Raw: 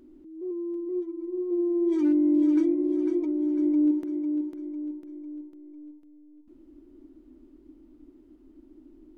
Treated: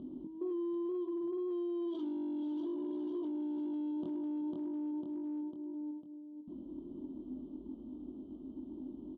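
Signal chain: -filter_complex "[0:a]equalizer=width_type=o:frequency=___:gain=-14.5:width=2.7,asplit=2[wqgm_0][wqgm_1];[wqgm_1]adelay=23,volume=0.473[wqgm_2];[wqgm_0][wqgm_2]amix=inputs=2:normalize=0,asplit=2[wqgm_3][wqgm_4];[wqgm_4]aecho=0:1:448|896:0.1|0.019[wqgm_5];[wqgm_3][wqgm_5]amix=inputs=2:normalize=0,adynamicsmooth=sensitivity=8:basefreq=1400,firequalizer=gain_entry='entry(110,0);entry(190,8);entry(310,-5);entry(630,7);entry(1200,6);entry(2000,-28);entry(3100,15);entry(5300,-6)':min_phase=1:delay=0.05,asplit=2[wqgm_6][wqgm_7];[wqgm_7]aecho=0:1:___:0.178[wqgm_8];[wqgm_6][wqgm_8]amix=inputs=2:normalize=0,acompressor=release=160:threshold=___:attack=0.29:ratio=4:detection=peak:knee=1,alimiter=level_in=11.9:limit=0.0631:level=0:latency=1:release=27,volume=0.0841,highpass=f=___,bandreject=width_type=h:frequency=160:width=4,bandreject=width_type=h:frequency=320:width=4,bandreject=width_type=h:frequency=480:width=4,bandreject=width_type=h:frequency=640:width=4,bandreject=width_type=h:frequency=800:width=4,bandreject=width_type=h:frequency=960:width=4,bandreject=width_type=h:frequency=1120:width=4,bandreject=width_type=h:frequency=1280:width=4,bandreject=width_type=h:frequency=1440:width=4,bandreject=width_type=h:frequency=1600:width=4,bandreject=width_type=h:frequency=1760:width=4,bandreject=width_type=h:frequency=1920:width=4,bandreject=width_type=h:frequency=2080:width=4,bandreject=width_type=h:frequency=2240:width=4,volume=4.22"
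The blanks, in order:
1200, 106, 0.00794, 100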